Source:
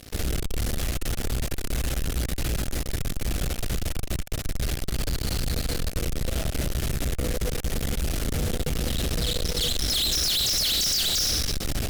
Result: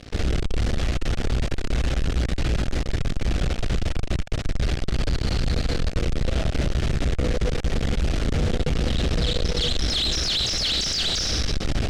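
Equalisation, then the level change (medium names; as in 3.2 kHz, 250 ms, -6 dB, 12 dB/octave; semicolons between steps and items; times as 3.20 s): distance through air 120 m; +4.5 dB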